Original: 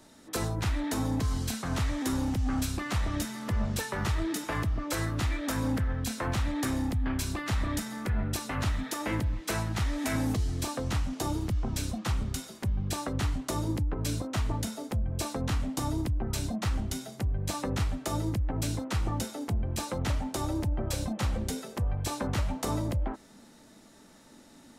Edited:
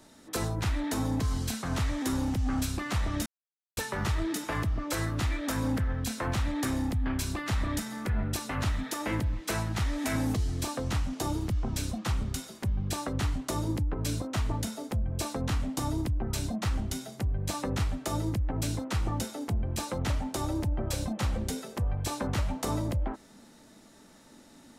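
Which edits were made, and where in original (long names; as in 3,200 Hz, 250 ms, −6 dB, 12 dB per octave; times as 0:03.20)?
0:03.26–0:03.77: silence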